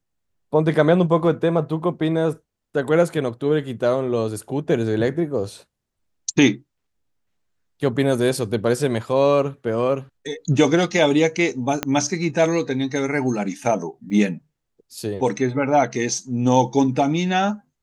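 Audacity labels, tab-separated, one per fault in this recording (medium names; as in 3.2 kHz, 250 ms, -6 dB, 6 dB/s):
11.830000	11.830000	pop -6 dBFS
14.100000	14.100000	dropout 3.5 ms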